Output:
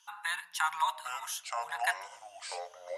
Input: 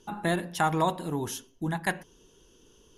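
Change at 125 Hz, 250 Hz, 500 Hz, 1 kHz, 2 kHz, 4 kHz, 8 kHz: under -40 dB, under -40 dB, -10.5 dB, -2.5 dB, 0.0 dB, +0.5 dB, 0.0 dB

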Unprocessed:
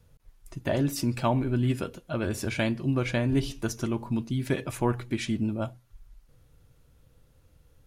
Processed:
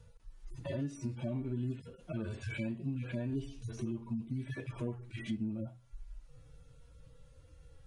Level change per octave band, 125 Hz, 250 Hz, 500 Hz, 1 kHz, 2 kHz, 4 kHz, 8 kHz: -9.5, -10.0, -13.0, -21.5, -12.5, -16.0, -17.5 dB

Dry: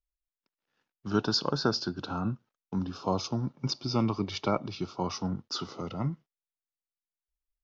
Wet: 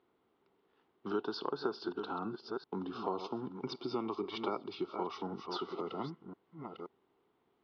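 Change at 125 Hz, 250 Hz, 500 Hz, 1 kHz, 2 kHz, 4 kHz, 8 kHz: -17.0 dB, -8.0 dB, -3.5 dB, -4.5 dB, -7.5 dB, -12.0 dB, n/a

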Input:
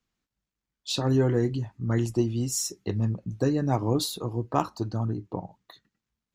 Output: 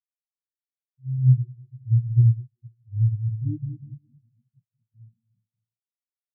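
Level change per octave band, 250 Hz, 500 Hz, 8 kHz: -8.5 dB, under -30 dB, under -40 dB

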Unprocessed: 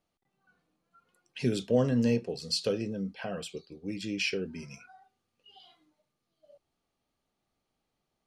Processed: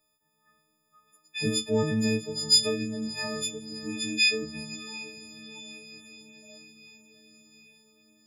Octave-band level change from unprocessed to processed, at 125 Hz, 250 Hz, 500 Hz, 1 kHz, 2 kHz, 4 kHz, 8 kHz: -0.5, +0.5, 0.0, +2.0, +8.5, +11.0, +12.5 dB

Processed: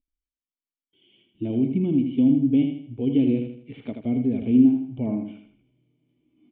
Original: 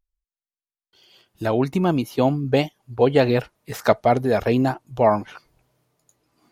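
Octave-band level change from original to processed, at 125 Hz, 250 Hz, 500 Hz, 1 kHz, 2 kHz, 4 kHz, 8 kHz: -4.5 dB, +4.0 dB, -13.5 dB, under -25 dB, under -15 dB, under -10 dB, n/a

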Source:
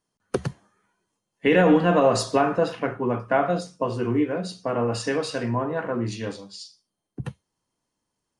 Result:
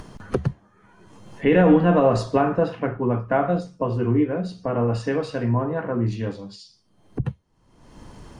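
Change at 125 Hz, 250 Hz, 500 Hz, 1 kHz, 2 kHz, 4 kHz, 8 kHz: +6.0 dB, +3.0 dB, +1.0 dB, 0.0 dB, -2.0 dB, -6.0 dB, under -10 dB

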